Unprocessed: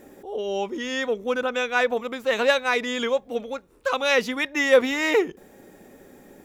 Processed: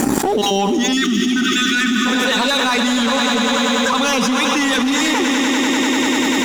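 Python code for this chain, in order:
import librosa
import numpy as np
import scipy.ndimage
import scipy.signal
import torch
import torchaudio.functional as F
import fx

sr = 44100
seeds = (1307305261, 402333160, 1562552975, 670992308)

p1 = fx.spec_dropout(x, sr, seeds[0], share_pct=20)
p2 = fx.graphic_eq(p1, sr, hz=(125, 250, 500, 1000, 2000, 4000, 8000), db=(4, 12, -10, 9, -4, 8, 11))
p3 = p2 + fx.echo_swell(p2, sr, ms=98, loudest=5, wet_db=-11.0, dry=0)
p4 = fx.spec_erase(p3, sr, start_s=0.93, length_s=1.13, low_hz=400.0, high_hz=1100.0)
p5 = fx.leveller(p4, sr, passes=2)
p6 = fx.env_flatten(p5, sr, amount_pct=100)
y = F.gain(torch.from_numpy(p6), -6.5).numpy()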